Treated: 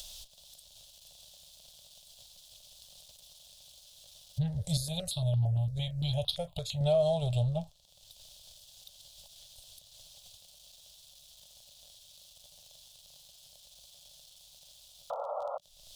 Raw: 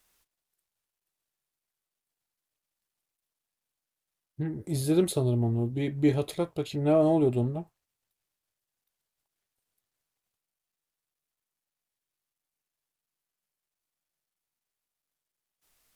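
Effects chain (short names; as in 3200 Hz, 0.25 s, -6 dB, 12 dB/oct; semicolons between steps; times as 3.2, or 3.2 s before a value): 15.1–15.58 painted sound noise 450–1400 Hz -30 dBFS; passive tone stack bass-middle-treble 10-0-10; upward compressor, threshold -27 dBFS; crackle 28/s -42 dBFS; EQ curve 170 Hz 0 dB, 340 Hz -26 dB, 580 Hz +4 dB, 1200 Hz -21 dB, 2100 Hz -25 dB, 3400 Hz +1 dB, 13000 Hz -16 dB; 4.77–6.81 step phaser 8.8 Hz 810–2100 Hz; gain +8 dB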